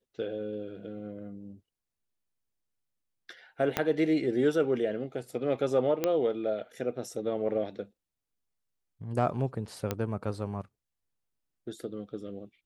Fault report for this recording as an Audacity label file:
3.770000	3.770000	click −11 dBFS
6.040000	6.040000	click −13 dBFS
9.910000	9.910000	click −15 dBFS

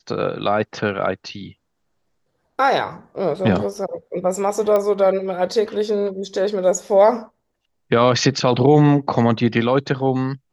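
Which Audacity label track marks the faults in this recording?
4.760000	4.760000	click −9 dBFS

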